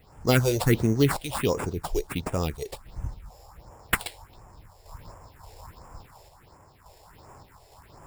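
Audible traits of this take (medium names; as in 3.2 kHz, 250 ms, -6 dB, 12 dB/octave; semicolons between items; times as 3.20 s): aliases and images of a low sample rate 6.2 kHz, jitter 0%; random-step tremolo; phasing stages 4, 1.4 Hz, lowest notch 200–4000 Hz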